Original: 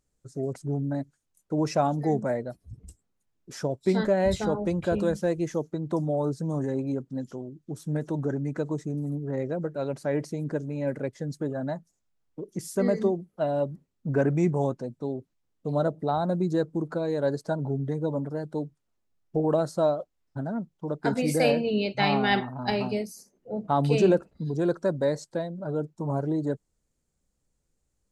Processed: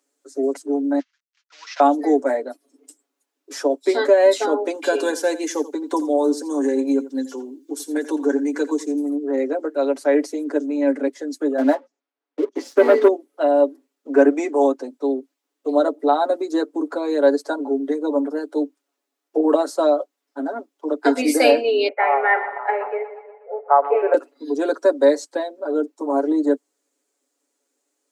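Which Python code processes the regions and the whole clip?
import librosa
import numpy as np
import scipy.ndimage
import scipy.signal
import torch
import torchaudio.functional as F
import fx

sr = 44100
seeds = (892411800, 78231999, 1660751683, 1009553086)

y = fx.chain(x, sr, fx.cvsd(bps=32000),
    fx.highpass(hz=1500.0, slope=24),
    fx.high_shelf(hz=2800.0, db=-8.0), at=(0.99, 1.8))
y = fx.chain(y, sr, fx.high_shelf(hz=2400.0, db=9.5),
    fx.notch_comb(f0_hz=640.0),
    fx.echo_single(ms=84, db=-15.5), at=(4.74, 9.02))
y = fx.chain(y, sr, fx.lowpass(hz=9500.0, slope=24),
    fx.low_shelf_res(hz=250.0, db=11.5, q=1.5), at=(10.59, 11.07))
y = fx.chain(y, sr, fx.air_absorb(metres=220.0),
    fx.hum_notches(base_hz=60, count=4),
    fx.leveller(passes=2), at=(11.58, 13.08))
y = fx.chain(y, sr, fx.cheby1_bandpass(low_hz=450.0, high_hz=2100.0, order=4),
    fx.echo_split(split_hz=850.0, low_ms=163, high_ms=121, feedback_pct=52, wet_db=-13.0), at=(21.88, 24.14))
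y = scipy.signal.sosfilt(scipy.signal.butter(16, 260.0, 'highpass', fs=sr, output='sos'), y)
y = y + 0.69 * np.pad(y, (int(7.1 * sr / 1000.0), 0))[:len(y)]
y = y * 10.0 ** (7.0 / 20.0)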